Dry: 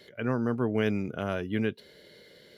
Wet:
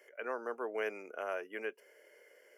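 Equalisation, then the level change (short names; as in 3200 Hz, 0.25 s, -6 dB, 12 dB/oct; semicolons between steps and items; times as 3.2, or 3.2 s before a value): HPF 450 Hz 24 dB/oct; Butterworth band-stop 3900 Hz, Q 1.3; -4.0 dB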